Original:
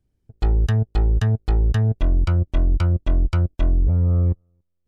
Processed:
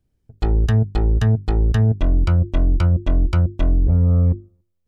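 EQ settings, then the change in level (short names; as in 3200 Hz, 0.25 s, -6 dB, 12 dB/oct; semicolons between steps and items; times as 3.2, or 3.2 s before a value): notches 50/100/150/200/250/300/350/400 Hz; dynamic EQ 250 Hz, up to +4 dB, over -35 dBFS, Q 0.77; +2.0 dB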